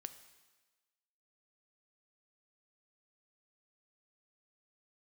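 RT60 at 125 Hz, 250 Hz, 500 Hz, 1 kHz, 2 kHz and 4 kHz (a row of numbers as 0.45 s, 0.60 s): 1.1 s, 1.2 s, 1.3 s, 1.3 s, 1.3 s, 1.3 s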